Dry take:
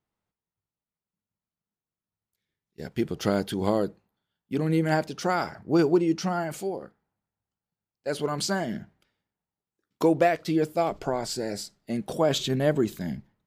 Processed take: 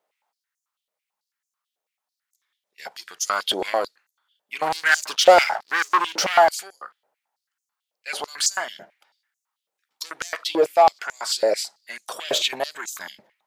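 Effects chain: 4.62–6.49 sample leveller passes 2; soft clip -19.5 dBFS, distortion -12 dB; stepped high-pass 9.1 Hz 570–6500 Hz; gain +7 dB

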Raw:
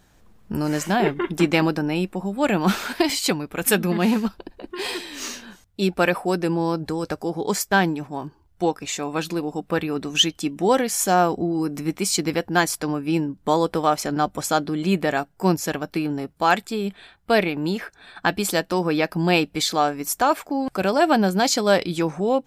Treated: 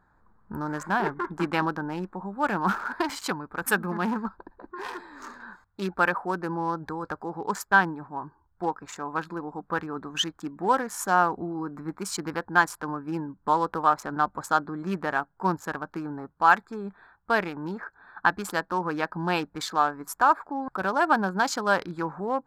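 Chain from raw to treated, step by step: Wiener smoothing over 15 samples; band shelf 1200 Hz +12 dB 1.2 oct; 5.4–7.43 mismatched tape noise reduction encoder only; gain -9 dB

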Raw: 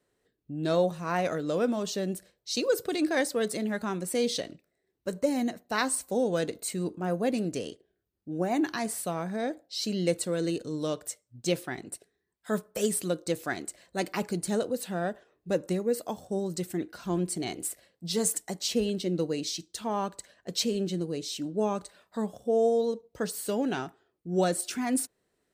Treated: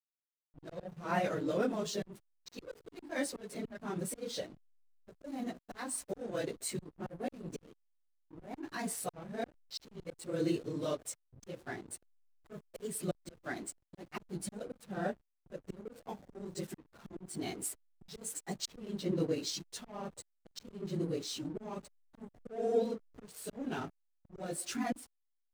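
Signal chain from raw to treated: phase scrambler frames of 50 ms; auto swell 0.343 s; backlash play -41 dBFS; gain -3.5 dB

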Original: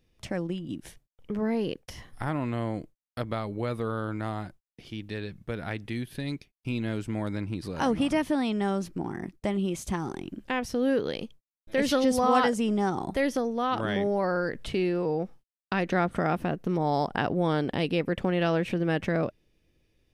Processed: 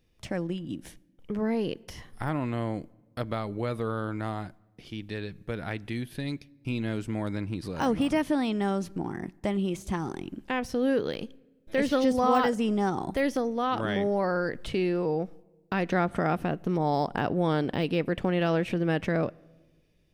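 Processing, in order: de-esser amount 95%; on a send: reverb RT60 1.3 s, pre-delay 7 ms, DRR 24 dB

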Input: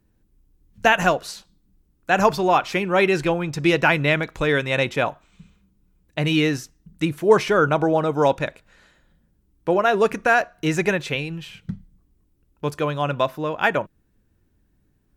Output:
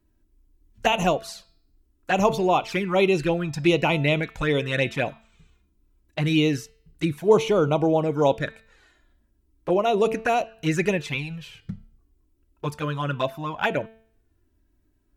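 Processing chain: envelope flanger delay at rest 3.1 ms, full sweep at -15 dBFS; de-hum 222.9 Hz, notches 23

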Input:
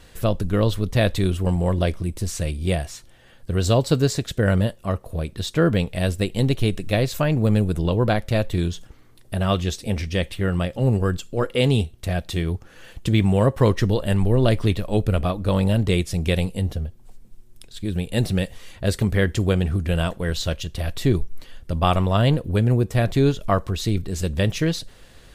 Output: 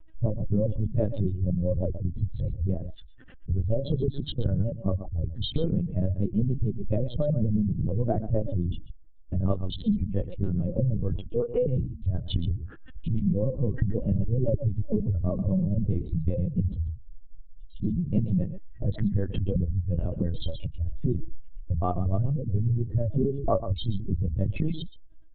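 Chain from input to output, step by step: spectral contrast raised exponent 2.7; compressor 6:1, threshold -24 dBFS, peak gain reduction 11 dB; harmoniser -3 st -5 dB; de-hum 72.33 Hz, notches 4; small resonant body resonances 220/560/1100 Hz, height 8 dB, ringing for 70 ms; on a send: echo 0.128 s -12.5 dB; on the sum: LPC vocoder at 8 kHz pitch kept

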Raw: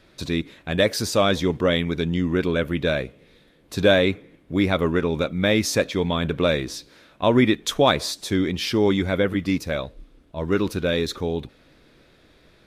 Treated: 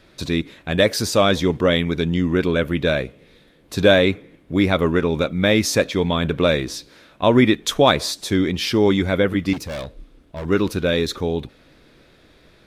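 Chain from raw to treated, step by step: 9.53–10.45 hard clip -29.5 dBFS, distortion -22 dB; gain +3 dB

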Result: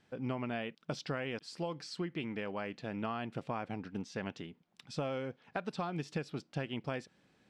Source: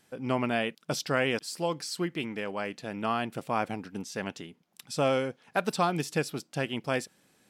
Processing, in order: compressor 6:1, threshold -31 dBFS, peak gain reduction 10 dB; LPF 4200 Hz 12 dB/oct; low shelf 140 Hz +7 dB; gain -3.5 dB

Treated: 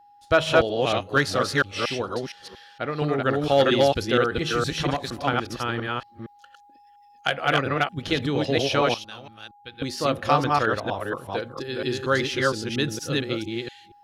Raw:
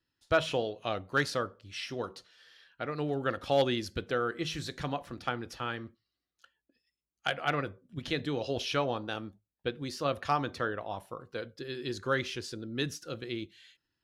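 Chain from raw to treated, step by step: reverse delay 0.232 s, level -0.5 dB; 8.94–9.82 passive tone stack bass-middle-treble 5-5-5; whine 820 Hz -58 dBFS; gain +7 dB

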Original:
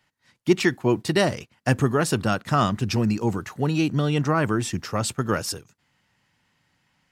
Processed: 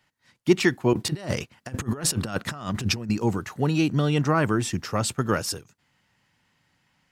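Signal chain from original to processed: 0.93–3.1 negative-ratio compressor -27 dBFS, ratio -0.5

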